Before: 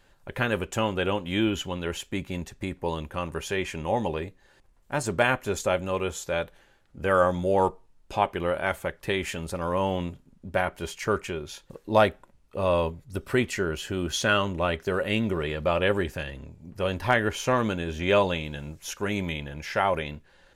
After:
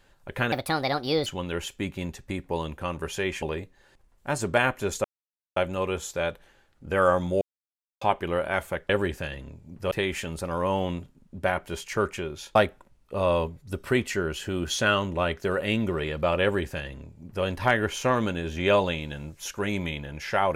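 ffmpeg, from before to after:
-filter_complex "[0:a]asplit=10[a][b][c][d][e][f][g][h][i][j];[a]atrim=end=0.524[k];[b]atrim=start=0.52:end=1.59,asetpts=PTS-STARTPTS,asetrate=63504,aresample=44100[l];[c]atrim=start=1.586:end=3.752[m];[d]atrim=start=4.068:end=5.69,asetpts=PTS-STARTPTS,afade=t=out:st=1.618:d=0.004:c=hsin,apad=pad_dur=0.52[n];[e]atrim=start=5.69:end=7.54,asetpts=PTS-STARTPTS,afade=t=in:d=0.004:c=hsin,afade=t=out:st=1.846:d=0.004:c=hsin[o];[f]atrim=start=7.54:end=8.14,asetpts=PTS-STARTPTS,volume=0[p];[g]atrim=start=8.14:end=9.022,asetpts=PTS-STARTPTS,afade=t=in:d=0.004:c=hsin[q];[h]atrim=start=15.848:end=16.872[r];[i]atrim=start=9.018:end=11.662[s];[j]atrim=start=11.978[t];[k][l]acrossfade=d=0.004:c1=hsin:c2=hsin[u];[u][m]acrossfade=d=0.004:c1=hsin:c2=hsin[v];[n][o][p][q]concat=n=4:v=0:a=1[w];[v][w]acrossfade=d=0.004:c1=hsin:c2=hsin[x];[x][r]acrossfade=d=0.004:c1=hsin:c2=hsin[y];[y][s]acrossfade=d=0.004:c1=hsin:c2=hsin[z];[z][t]acrossfade=d=0.004:c1=hsin:c2=hsin"

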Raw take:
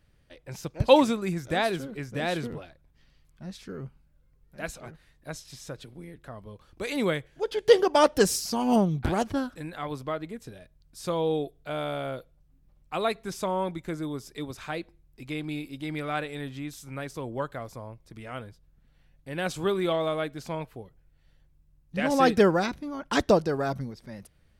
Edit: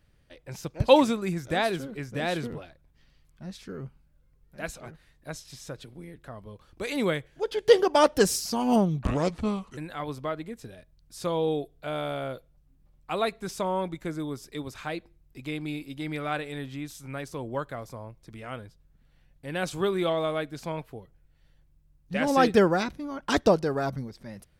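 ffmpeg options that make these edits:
-filter_complex "[0:a]asplit=3[a][b][c];[a]atrim=end=9.034[d];[b]atrim=start=9.03:end=9.6,asetpts=PTS-STARTPTS,asetrate=33957,aresample=44100,atrim=end_sample=32645,asetpts=PTS-STARTPTS[e];[c]atrim=start=9.596[f];[d][e]acrossfade=d=0.004:c1=hsin:c2=hsin[g];[g][f]acrossfade=d=0.004:c1=hsin:c2=hsin"

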